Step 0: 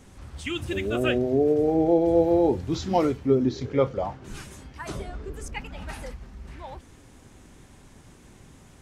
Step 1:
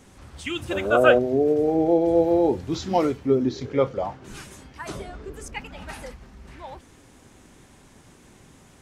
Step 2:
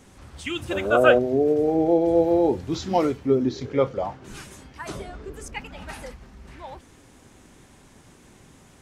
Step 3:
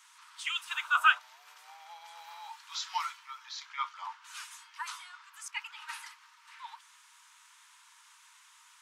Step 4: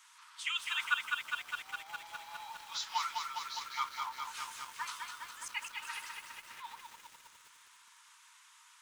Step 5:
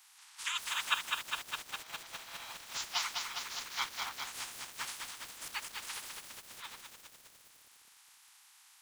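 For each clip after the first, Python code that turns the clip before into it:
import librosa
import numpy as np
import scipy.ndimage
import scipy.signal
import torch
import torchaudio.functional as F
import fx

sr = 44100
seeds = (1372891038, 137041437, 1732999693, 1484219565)

y1 = fx.spec_box(x, sr, start_s=0.7, length_s=0.49, low_hz=470.0, high_hz=1600.0, gain_db=12)
y1 = fx.low_shelf(y1, sr, hz=120.0, db=-7.5)
y1 = y1 * 10.0 ** (1.5 / 20.0)
y2 = y1
y3 = scipy.signal.sosfilt(scipy.signal.cheby1(6, 3, 910.0, 'highpass', fs=sr, output='sos'), y2)
y4 = fx.gate_flip(y3, sr, shuts_db=-17.0, range_db=-30)
y4 = fx.echo_crushed(y4, sr, ms=204, feedback_pct=80, bits=9, wet_db=-4)
y4 = y4 * 10.0 ** (-1.5 / 20.0)
y5 = fx.spec_clip(y4, sr, under_db=22)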